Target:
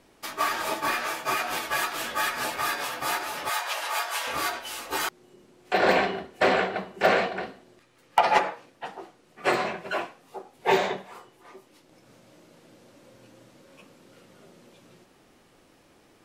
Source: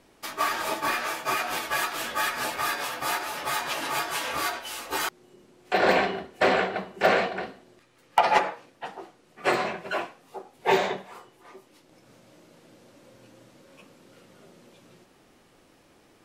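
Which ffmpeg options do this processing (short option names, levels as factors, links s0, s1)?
-filter_complex "[0:a]asettb=1/sr,asplit=3[s0][s1][s2];[s0]atrim=end=3.494[s3];[s1]atrim=start=3.49:end=4.27,asetpts=PTS-STARTPTS,afade=t=in:d=0.004:c=qsin,afade=t=out:st=0.776:d=0.004:c=qsin,highpass=f=520:w=0.5412,highpass=f=520:w=1.3066[s4];[s2]atrim=start=4.266[s5];[s3][s4]acrossfade=d=0.004:c1=hsin:c2=qsin[s6];[s6][s5]acrossfade=d=0.004:c1=qsin:c2=hsin"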